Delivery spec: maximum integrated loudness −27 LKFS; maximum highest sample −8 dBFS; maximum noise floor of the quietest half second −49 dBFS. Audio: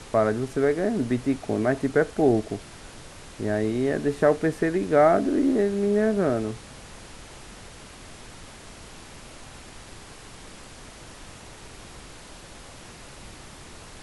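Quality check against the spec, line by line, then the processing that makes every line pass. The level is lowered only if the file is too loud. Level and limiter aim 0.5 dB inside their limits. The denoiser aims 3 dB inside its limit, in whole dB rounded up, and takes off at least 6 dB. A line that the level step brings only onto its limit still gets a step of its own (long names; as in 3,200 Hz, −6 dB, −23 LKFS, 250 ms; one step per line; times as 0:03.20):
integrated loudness −23.5 LKFS: out of spec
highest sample −6.5 dBFS: out of spec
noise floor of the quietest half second −44 dBFS: out of spec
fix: broadband denoise 6 dB, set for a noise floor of −44 dBFS
level −4 dB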